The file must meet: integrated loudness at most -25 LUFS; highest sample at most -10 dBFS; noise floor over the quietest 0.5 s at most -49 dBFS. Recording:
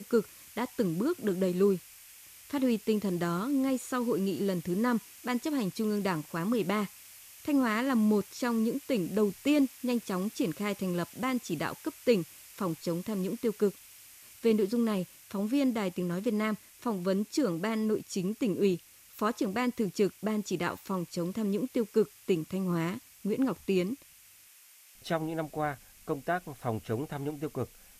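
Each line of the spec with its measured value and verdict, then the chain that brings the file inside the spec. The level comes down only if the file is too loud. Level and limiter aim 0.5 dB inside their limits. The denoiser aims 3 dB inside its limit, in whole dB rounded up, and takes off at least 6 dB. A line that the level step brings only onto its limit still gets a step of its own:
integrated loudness -31.5 LUFS: pass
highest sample -13.5 dBFS: pass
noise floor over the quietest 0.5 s -57 dBFS: pass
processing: none needed

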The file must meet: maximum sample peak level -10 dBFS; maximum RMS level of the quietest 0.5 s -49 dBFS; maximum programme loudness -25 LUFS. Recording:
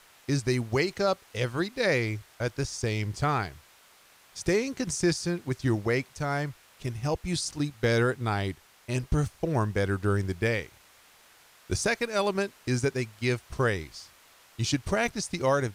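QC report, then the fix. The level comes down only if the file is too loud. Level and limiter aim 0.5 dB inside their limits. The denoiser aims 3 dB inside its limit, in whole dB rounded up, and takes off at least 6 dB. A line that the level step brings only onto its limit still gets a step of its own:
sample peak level -13.5 dBFS: pass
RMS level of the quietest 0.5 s -58 dBFS: pass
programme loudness -29.0 LUFS: pass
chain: none needed

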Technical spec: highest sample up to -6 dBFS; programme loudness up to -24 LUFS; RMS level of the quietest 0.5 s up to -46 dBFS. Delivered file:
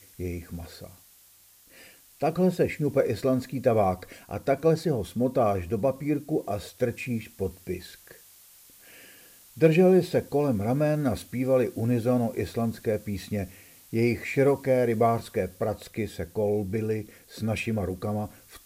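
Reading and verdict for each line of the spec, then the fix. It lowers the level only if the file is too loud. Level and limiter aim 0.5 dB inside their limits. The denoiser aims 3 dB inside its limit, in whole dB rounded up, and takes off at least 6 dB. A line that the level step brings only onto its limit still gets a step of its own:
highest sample -9.5 dBFS: pass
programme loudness -27.0 LUFS: pass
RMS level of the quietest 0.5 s -57 dBFS: pass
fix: none needed

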